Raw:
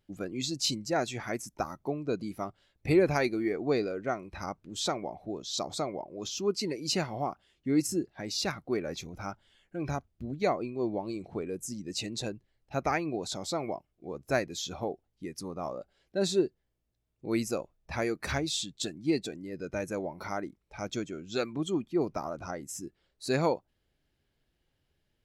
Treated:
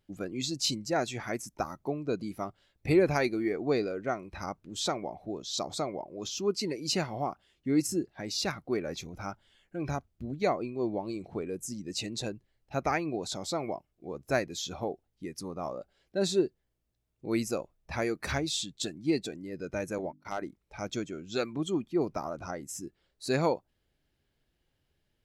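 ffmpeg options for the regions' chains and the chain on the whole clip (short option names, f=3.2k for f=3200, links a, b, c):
-filter_complex "[0:a]asettb=1/sr,asplit=3[a][b][c];[a]atrim=end=19.984[d];[b]atrim=start=19.98:end=20.42,asetpts=PTS-STARTPTS,afade=t=in:d=0.004:c=qsin,afade=t=out:st=0.436:d=0.004:c=qsin,agate=range=-43dB:threshold=-39dB:ratio=16:release=100:detection=peak,bandreject=f=50:t=h:w=6,bandreject=f=100:t=h:w=6,bandreject=f=150:t=h:w=6,bandreject=f=200:t=h:w=6,bandreject=f=250:t=h:w=6,bandreject=f=300:t=h:w=6,volume=24.5dB,asoftclip=hard,volume=-24.5dB[e];[c]atrim=start=20.416[f];[d][e]acrossfade=d=0.004:c1=hsin:c2=qsin[g];[g][f]acrossfade=d=0.004:c1=qsin:c2=hsin"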